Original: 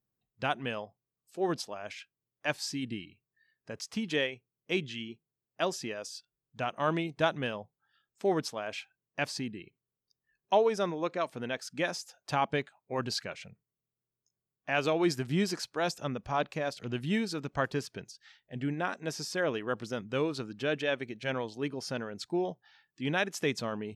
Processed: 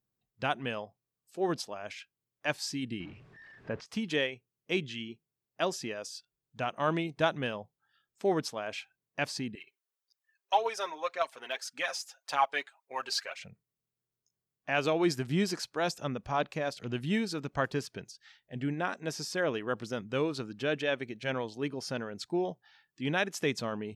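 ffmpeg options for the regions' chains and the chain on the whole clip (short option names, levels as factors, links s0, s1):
-filter_complex "[0:a]asettb=1/sr,asplit=3[s0][s1][s2];[s0]atrim=end=3.004[s3];[s1]atrim=start=3:end=3.86,asetpts=PTS-STARTPTS,afade=t=in:d=0.004:c=qsin,afade=t=out:st=0.856:d=0.004:c=qsin,aeval=exprs='val(0)+0.5*0.00266*sgn(val(0))':c=same,acontrast=32,lowpass=2100[s4];[s2]atrim=start=3.856[s5];[s3][s4]acrossfade=d=0.004:c1=hsin:c2=qsin[s6];[s6][s5]acrossfade=d=0.004:c1=qsin:c2=hsin,asettb=1/sr,asplit=3[s7][s8][s9];[s7]atrim=end=9.554[s10];[s8]atrim=start=9.55:end=13.4,asetpts=PTS-STARTPTS,afade=t=in:d=0.004:c=qsin,afade=t=out:st=3.846:d=0.004:c=qsin,highpass=770,aecho=1:1:7.4:0.52,atrim=end_sample=169785,aphaser=in_gain=1:out_gain=1:delay=3.3:decay=0.46:speed=1.8:type=triangular[s11];[s9]atrim=start=13.396[s12];[s10][s11]acrossfade=d=0.004:c1=hsin:c2=qsin[s13];[s13][s12]acrossfade=d=0.004:c1=qsin:c2=hsin"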